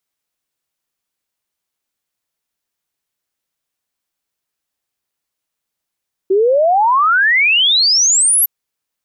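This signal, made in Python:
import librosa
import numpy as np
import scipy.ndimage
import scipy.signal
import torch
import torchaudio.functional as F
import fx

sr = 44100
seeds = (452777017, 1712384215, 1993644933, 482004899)

y = fx.ess(sr, length_s=2.16, from_hz=370.0, to_hz=12000.0, level_db=-9.0)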